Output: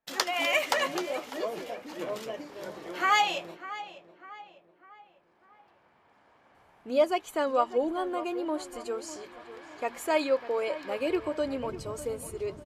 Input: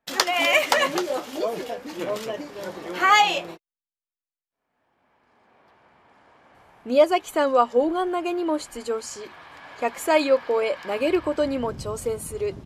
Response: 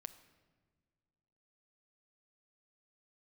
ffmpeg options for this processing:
-filter_complex "[0:a]bandreject=f=60:t=h:w=6,bandreject=f=120:t=h:w=6,bandreject=f=180:t=h:w=6,bandreject=f=240:t=h:w=6,asplit=2[a][b];[b]adelay=599,lowpass=f=2.7k:p=1,volume=-14dB,asplit=2[c][d];[d]adelay=599,lowpass=f=2.7k:p=1,volume=0.47,asplit=2[e][f];[f]adelay=599,lowpass=f=2.7k:p=1,volume=0.47,asplit=2[g][h];[h]adelay=599,lowpass=f=2.7k:p=1,volume=0.47[i];[a][c][e][g][i]amix=inputs=5:normalize=0,volume=-7dB"

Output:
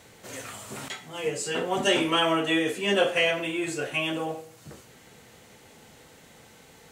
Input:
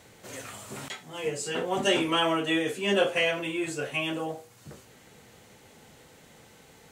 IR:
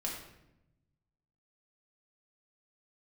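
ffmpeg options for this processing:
-filter_complex "[0:a]asplit=2[a][b];[1:a]atrim=start_sample=2205,lowshelf=f=440:g=-9.5[c];[b][c]afir=irnorm=-1:irlink=0,volume=-9dB[d];[a][d]amix=inputs=2:normalize=0"

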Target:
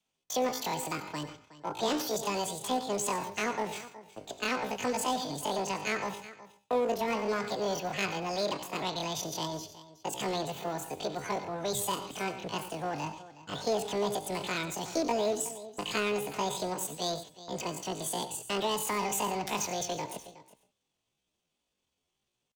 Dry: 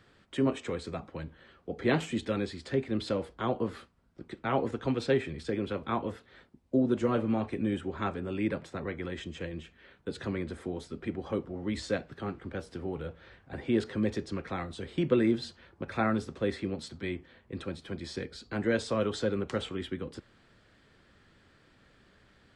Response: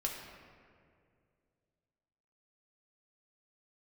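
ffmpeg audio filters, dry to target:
-filter_complex "[0:a]adynamicequalizer=threshold=0.00708:dfrequency=210:dqfactor=2.1:tfrequency=210:tqfactor=2.1:attack=5:release=100:ratio=0.375:range=2:mode=cutabove:tftype=bell,agate=range=-26dB:threshold=-49dB:ratio=16:detection=peak,acrossover=split=250[a][b];[b]acompressor=threshold=-31dB:ratio=10[c];[a][c]amix=inputs=2:normalize=0,asplit=2[d][e];[1:a]atrim=start_sample=2205,atrim=end_sample=3969,adelay=92[f];[e][f]afir=irnorm=-1:irlink=0,volume=-13dB[g];[d][g]amix=inputs=2:normalize=0,asetrate=83250,aresample=44100,atempo=0.529732,aecho=1:1:367:0.133,asplit=2[h][i];[i]aeval=exprs='0.02*(abs(mod(val(0)/0.02+3,4)-2)-1)':c=same,volume=-11dB[j];[h][j]amix=inputs=2:normalize=0,highshelf=f=2.9k:g=8"

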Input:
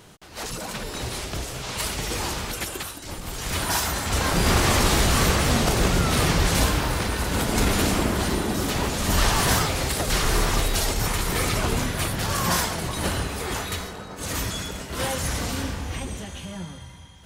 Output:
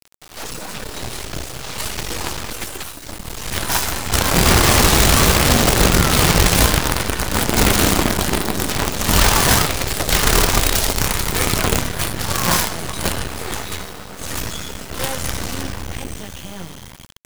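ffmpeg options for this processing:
-af "acrusher=bits=4:dc=4:mix=0:aa=0.000001,volume=6dB"

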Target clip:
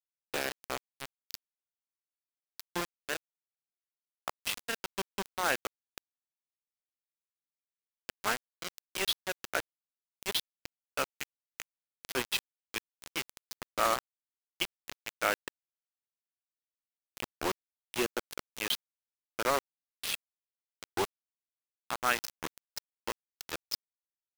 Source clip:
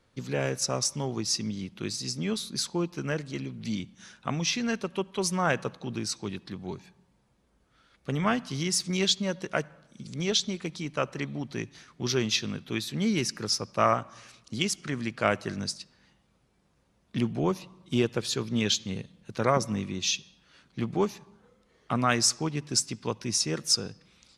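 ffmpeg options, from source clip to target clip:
-af "highpass=f=360:w=0.5412,highpass=f=360:w=1.3066,equalizer=f=430:t=q:w=4:g=-7,equalizer=f=650:t=q:w=4:g=-8,equalizer=f=1.1k:t=q:w=4:g=-6,equalizer=f=2.1k:t=q:w=4:g=-3,equalizer=f=3.6k:t=q:w=4:g=-5,lowpass=f=3.8k:w=0.5412,lowpass=f=3.8k:w=1.3066,acrusher=bits=4:mix=0:aa=0.000001"

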